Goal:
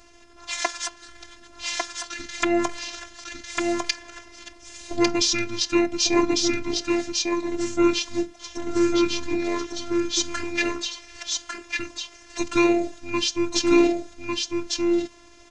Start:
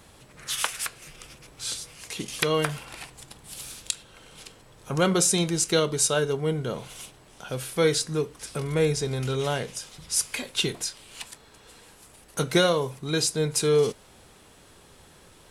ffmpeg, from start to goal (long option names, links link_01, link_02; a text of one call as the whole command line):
ffmpeg -i in.wav -af "asetrate=28595,aresample=44100,atempo=1.54221,aecho=1:1:1150:0.708,afftfilt=real='hypot(re,im)*cos(PI*b)':imag='0':win_size=512:overlap=0.75,volume=4.5dB" out.wav